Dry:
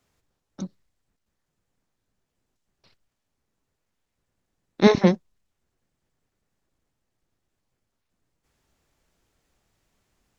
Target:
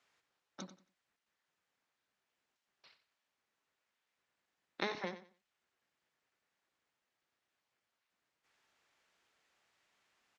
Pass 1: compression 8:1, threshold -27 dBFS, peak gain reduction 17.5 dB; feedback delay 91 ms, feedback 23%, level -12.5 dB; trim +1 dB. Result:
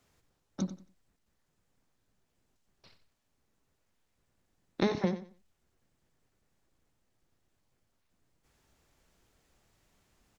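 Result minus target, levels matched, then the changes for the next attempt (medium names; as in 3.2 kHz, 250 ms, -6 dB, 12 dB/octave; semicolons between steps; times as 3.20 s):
2 kHz band -9.0 dB
add after compression: band-pass filter 2.1 kHz, Q 0.67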